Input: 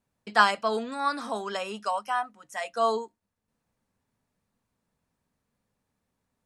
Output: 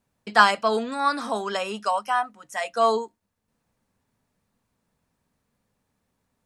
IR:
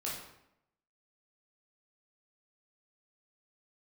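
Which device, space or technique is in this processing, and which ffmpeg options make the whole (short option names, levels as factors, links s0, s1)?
parallel distortion: -filter_complex "[0:a]asplit=2[s0][s1];[s1]asoftclip=type=hard:threshold=0.119,volume=0.211[s2];[s0][s2]amix=inputs=2:normalize=0,volume=1.41"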